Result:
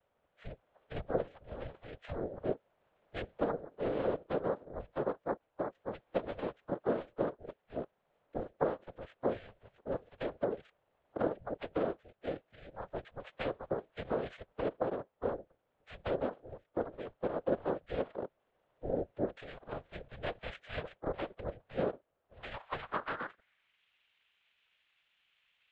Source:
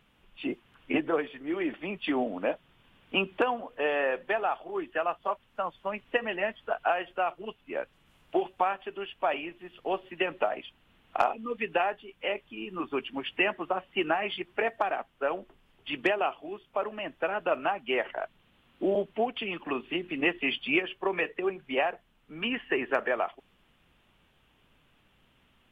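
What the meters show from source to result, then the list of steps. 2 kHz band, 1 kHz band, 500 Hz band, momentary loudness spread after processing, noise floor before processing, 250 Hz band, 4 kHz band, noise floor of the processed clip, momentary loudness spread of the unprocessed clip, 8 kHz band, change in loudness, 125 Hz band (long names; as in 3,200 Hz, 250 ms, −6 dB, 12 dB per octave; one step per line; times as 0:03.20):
−16.0 dB, −11.5 dB, −5.5 dB, 12 LU, −66 dBFS, −7.0 dB, −16.5 dB, −79 dBFS, 9 LU, can't be measured, −8.0 dB, +4.0 dB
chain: cochlear-implant simulation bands 6
band-pass filter sweep 870 Hz → 3,000 Hz, 0:22.30–0:23.83
frequency shifter −320 Hz
level −1 dB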